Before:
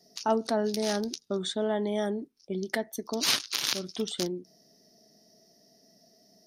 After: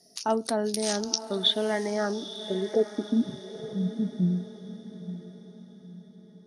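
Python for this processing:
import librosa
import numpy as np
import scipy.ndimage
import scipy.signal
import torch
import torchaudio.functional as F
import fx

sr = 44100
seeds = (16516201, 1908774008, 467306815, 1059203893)

y = fx.filter_sweep_lowpass(x, sr, from_hz=10000.0, to_hz=180.0, start_s=0.77, end_s=3.37, q=5.6)
y = fx.echo_diffused(y, sr, ms=928, feedback_pct=41, wet_db=-12.5)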